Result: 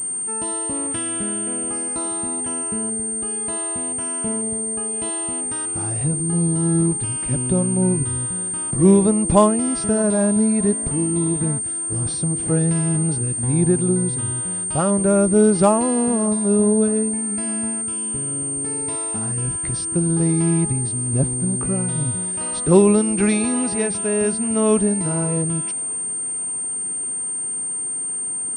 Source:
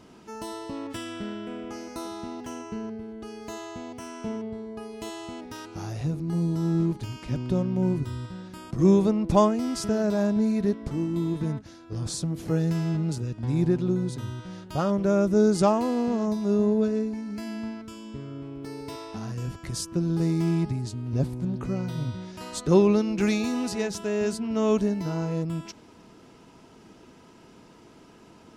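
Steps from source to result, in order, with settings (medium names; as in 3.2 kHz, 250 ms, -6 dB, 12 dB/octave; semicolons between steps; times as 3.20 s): thinning echo 613 ms, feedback 69%, high-pass 680 Hz, level -22 dB; class-D stage that switches slowly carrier 8.7 kHz; trim +5.5 dB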